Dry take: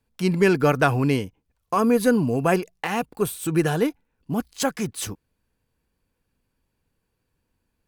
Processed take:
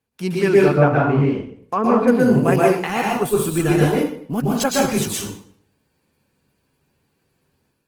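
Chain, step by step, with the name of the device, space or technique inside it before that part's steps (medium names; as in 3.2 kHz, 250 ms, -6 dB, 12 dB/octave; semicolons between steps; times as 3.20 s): 0.60–2.08 s: low-pass that closes with the level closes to 1.8 kHz, closed at -16.5 dBFS; far-field microphone of a smart speaker (reverberation RT60 0.55 s, pre-delay 112 ms, DRR -3.5 dB; high-pass 99 Hz 12 dB/octave; level rider gain up to 6.5 dB; trim -1.5 dB; Opus 20 kbps 48 kHz)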